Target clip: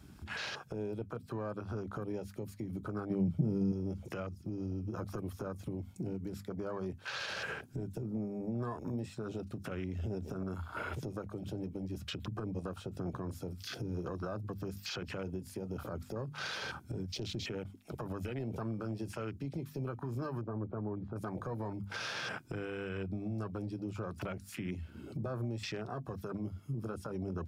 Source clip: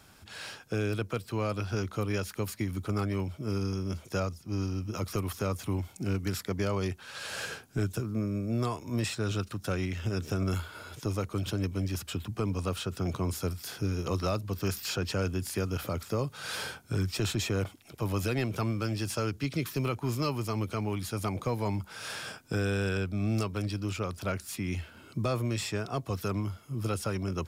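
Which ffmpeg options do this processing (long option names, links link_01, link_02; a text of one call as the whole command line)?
ffmpeg -i in.wav -filter_complex "[0:a]acompressor=threshold=-39dB:ratio=20,flanger=delay=4.7:depth=1.2:regen=-73:speed=0.11:shape=triangular,afwtdn=0.00224,bandreject=frequency=50:width_type=h:width=6,bandreject=frequency=100:width_type=h:width=6,bandreject=frequency=150:width_type=h:width=6,bandreject=frequency=200:width_type=h:width=6,bandreject=frequency=250:width_type=h:width=6,alimiter=level_in=19.5dB:limit=-24dB:level=0:latency=1:release=99,volume=-19.5dB,asettb=1/sr,asplit=3[link_01][link_02][link_03];[link_01]atrim=end=3.104[link_04];[link_02]atrim=start=3.1:end=3.72,asetpts=PTS-STARTPTS,afade=type=in:duration=0.004:curve=qsin,afade=type=out:start_time=0.616:duration=0.004:curve=qsin,equalizer=frequency=170:width=1.6:gain=13.5[link_05];[link_03]atrim=start=3.716[link_06];[link_04][link_05]acrossfade=duration=0.004:curve1=hsin:curve2=qsin[link_07];[link_07][link_06]acrossfade=duration=0.004:curve1=qsin:curve2=hsin,asettb=1/sr,asplit=3[link_08][link_09][link_10];[link_08]atrim=end=20.414[link_11];[link_09]atrim=start=20.41:end=21.16,asetpts=PTS-STARTPTS,afade=type=in:duration=0.004:curve=qsin,afade=type=out:start_time=0.746:duration=0.004:curve=qsin,lowpass=1000[link_12];[link_10]atrim=start=21.156[link_13];[link_11][link_12]acrossfade=duration=0.004:curve1=hsin:curve2=qsin[link_14];[link_14][link_13]acrossfade=duration=0.004:curve1=qsin:curve2=hsin,volume=13.5dB" out.wav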